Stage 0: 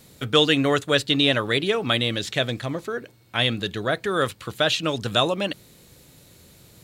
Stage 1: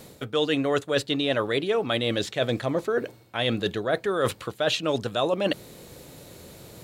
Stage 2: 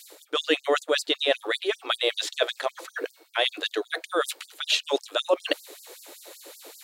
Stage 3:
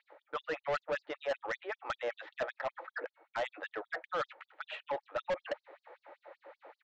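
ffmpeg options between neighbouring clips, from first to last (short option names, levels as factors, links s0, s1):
-af "equalizer=f=560:t=o:w=2.2:g=8,areverse,acompressor=threshold=0.0562:ratio=6,areverse,volume=1.41"
-af "afftfilt=real='re*gte(b*sr/1024,260*pow(4600/260,0.5+0.5*sin(2*PI*5.2*pts/sr)))':imag='im*gte(b*sr/1024,260*pow(4600/260,0.5+0.5*sin(2*PI*5.2*pts/sr)))':win_size=1024:overlap=0.75,volume=1.58"
-af "highpass=230,equalizer=f=280:t=q:w=4:g=-5,equalizer=f=400:t=q:w=4:g=-8,equalizer=f=570:t=q:w=4:g=7,equalizer=f=850:t=q:w=4:g=10,equalizer=f=1300:t=q:w=4:g=5,equalizer=f=1900:t=q:w=4:g=4,lowpass=f=2100:w=0.5412,lowpass=f=2100:w=1.3066,aresample=16000,asoftclip=type=tanh:threshold=0.1,aresample=44100,volume=0.376"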